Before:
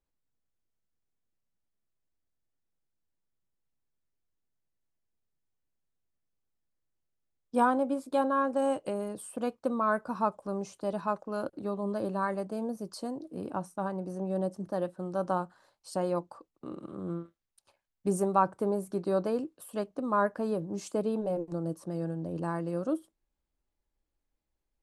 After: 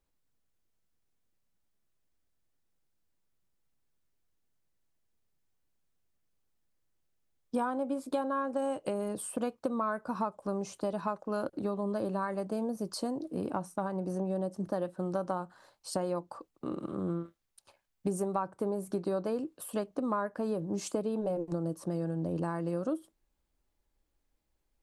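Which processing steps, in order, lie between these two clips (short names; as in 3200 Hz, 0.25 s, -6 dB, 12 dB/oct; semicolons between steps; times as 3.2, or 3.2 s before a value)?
compressor 6:1, threshold -34 dBFS, peak gain reduction 15 dB; gain +5 dB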